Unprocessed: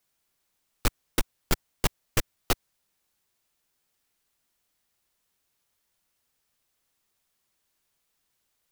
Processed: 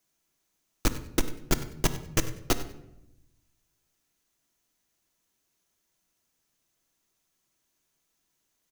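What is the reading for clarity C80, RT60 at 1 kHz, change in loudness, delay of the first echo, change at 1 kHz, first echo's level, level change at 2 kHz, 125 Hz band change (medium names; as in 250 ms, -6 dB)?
13.5 dB, 0.75 s, +0.5 dB, 96 ms, -0.5 dB, -16.5 dB, -1.0 dB, +1.5 dB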